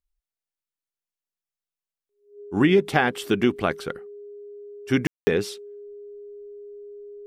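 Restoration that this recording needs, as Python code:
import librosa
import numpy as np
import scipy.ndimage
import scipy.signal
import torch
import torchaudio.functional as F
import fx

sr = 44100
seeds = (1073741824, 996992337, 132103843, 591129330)

y = fx.notch(x, sr, hz=410.0, q=30.0)
y = fx.fix_ambience(y, sr, seeds[0], print_start_s=2.09, print_end_s=2.59, start_s=5.07, end_s=5.27)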